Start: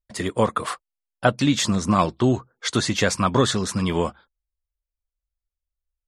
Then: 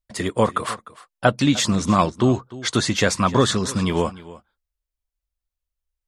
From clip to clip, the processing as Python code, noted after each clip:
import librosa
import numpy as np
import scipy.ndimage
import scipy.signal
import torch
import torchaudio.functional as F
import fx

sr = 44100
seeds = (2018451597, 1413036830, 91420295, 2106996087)

y = x + 10.0 ** (-18.5 / 20.0) * np.pad(x, (int(302 * sr / 1000.0), 0))[:len(x)]
y = F.gain(torch.from_numpy(y), 1.5).numpy()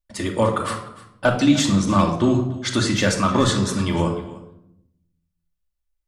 y = np.clip(x, -10.0 ** (-6.5 / 20.0), 10.0 ** (-6.5 / 20.0))
y = fx.room_shoebox(y, sr, seeds[0], volume_m3=2000.0, walls='furnished', distance_m=2.5)
y = F.gain(torch.from_numpy(y), -2.5).numpy()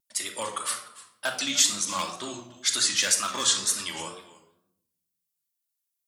y = np.diff(x, prepend=0.0)
y = fx.wow_flutter(y, sr, seeds[1], rate_hz=2.1, depth_cents=92.0)
y = F.gain(torch.from_numpy(y), 6.5).numpy()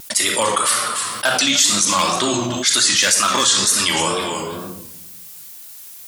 y = fx.env_flatten(x, sr, amount_pct=70)
y = F.gain(torch.from_numpy(y), 4.5).numpy()